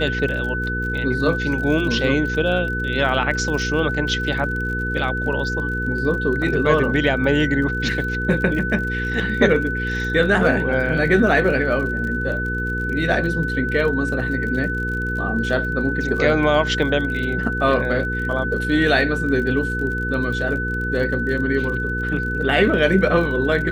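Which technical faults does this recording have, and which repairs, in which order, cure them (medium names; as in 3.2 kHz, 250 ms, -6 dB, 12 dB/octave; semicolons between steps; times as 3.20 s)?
crackle 40 per s -29 dBFS
hum 60 Hz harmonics 8 -26 dBFS
whine 1.5 kHz -24 dBFS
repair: de-click; de-hum 60 Hz, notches 8; band-stop 1.5 kHz, Q 30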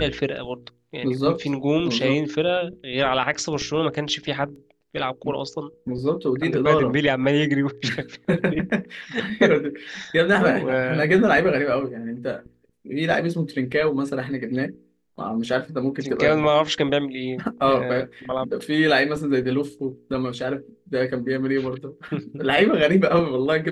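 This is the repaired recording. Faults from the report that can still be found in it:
nothing left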